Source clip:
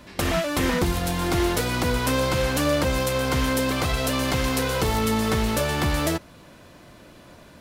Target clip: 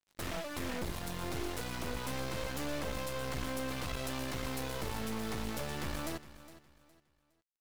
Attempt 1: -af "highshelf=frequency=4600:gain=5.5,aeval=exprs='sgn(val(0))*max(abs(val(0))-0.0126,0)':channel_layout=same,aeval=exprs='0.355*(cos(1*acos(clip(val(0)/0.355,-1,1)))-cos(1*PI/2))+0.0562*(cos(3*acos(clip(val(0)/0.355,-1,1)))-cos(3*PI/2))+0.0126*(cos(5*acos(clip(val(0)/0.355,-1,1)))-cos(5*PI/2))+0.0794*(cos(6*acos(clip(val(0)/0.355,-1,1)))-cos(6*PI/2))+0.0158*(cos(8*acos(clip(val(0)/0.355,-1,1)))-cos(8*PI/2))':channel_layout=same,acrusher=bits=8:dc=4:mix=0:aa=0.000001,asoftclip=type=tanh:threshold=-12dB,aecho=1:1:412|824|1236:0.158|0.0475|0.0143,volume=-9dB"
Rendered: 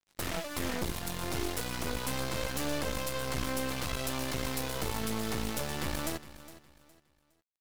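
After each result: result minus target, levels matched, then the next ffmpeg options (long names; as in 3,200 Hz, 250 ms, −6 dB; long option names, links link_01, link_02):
soft clipping: distortion −10 dB; 8,000 Hz band +2.5 dB
-af "highshelf=frequency=4600:gain=5.5,aeval=exprs='sgn(val(0))*max(abs(val(0))-0.0126,0)':channel_layout=same,aeval=exprs='0.355*(cos(1*acos(clip(val(0)/0.355,-1,1)))-cos(1*PI/2))+0.0562*(cos(3*acos(clip(val(0)/0.355,-1,1)))-cos(3*PI/2))+0.0126*(cos(5*acos(clip(val(0)/0.355,-1,1)))-cos(5*PI/2))+0.0794*(cos(6*acos(clip(val(0)/0.355,-1,1)))-cos(6*PI/2))+0.0158*(cos(8*acos(clip(val(0)/0.355,-1,1)))-cos(8*PI/2))':channel_layout=same,acrusher=bits=8:dc=4:mix=0:aa=0.000001,asoftclip=type=tanh:threshold=-20.5dB,aecho=1:1:412|824|1236:0.158|0.0475|0.0143,volume=-9dB"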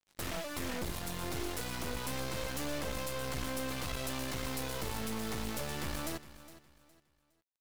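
8,000 Hz band +2.5 dB
-af "aeval=exprs='sgn(val(0))*max(abs(val(0))-0.0126,0)':channel_layout=same,aeval=exprs='0.355*(cos(1*acos(clip(val(0)/0.355,-1,1)))-cos(1*PI/2))+0.0562*(cos(3*acos(clip(val(0)/0.355,-1,1)))-cos(3*PI/2))+0.0126*(cos(5*acos(clip(val(0)/0.355,-1,1)))-cos(5*PI/2))+0.0794*(cos(6*acos(clip(val(0)/0.355,-1,1)))-cos(6*PI/2))+0.0158*(cos(8*acos(clip(val(0)/0.355,-1,1)))-cos(8*PI/2))':channel_layout=same,acrusher=bits=8:dc=4:mix=0:aa=0.000001,asoftclip=type=tanh:threshold=-20.5dB,aecho=1:1:412|824|1236:0.158|0.0475|0.0143,volume=-9dB"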